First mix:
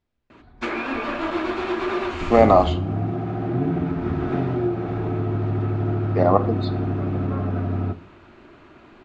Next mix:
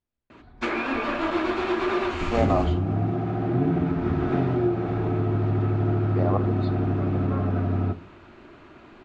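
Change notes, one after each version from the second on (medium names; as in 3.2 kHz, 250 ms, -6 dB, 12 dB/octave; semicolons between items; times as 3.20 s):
second voice -10.0 dB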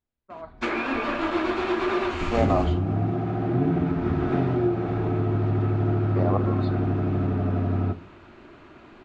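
first voice: entry -0.85 s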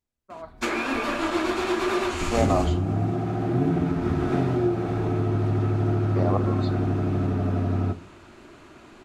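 master: remove low-pass 3.4 kHz 12 dB/octave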